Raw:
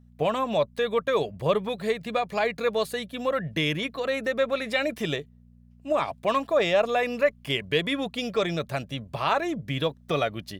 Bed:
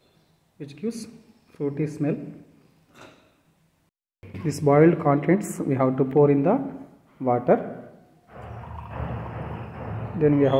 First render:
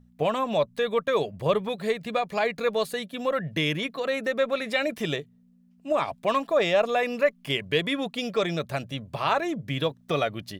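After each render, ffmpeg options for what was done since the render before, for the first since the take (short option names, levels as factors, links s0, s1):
-af "bandreject=f=60:t=h:w=4,bandreject=f=120:t=h:w=4"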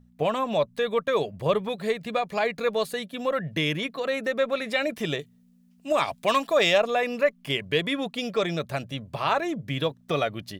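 -filter_complex "[0:a]asettb=1/sr,asplit=3[s0][s1][s2];[s0]atrim=end=5.194[s3];[s1]atrim=start=5.19:end=6.78,asetpts=PTS-STARTPTS,afade=t=in:d=0.004:c=qsin,afade=t=out:st=1.586:d=0.004:c=qsin,highshelf=f=2200:g=10[s4];[s2]atrim=start=6.776[s5];[s3][s4]acrossfade=d=0.004:c1=hsin:c2=qsin[s6];[s6][s5]acrossfade=d=0.004:c1=qsin:c2=hsin"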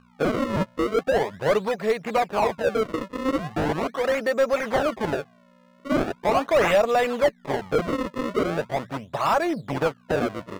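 -filter_complex "[0:a]acrusher=samples=32:mix=1:aa=0.000001:lfo=1:lforange=51.2:lforate=0.4,asplit=2[s0][s1];[s1]highpass=f=720:p=1,volume=7.08,asoftclip=type=tanh:threshold=0.376[s2];[s0][s2]amix=inputs=2:normalize=0,lowpass=f=1100:p=1,volume=0.501"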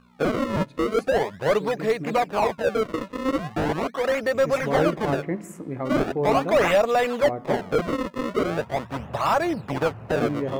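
-filter_complex "[1:a]volume=0.376[s0];[0:a][s0]amix=inputs=2:normalize=0"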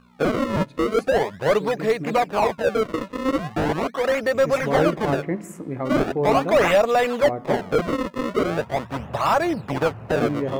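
-af "volume=1.26"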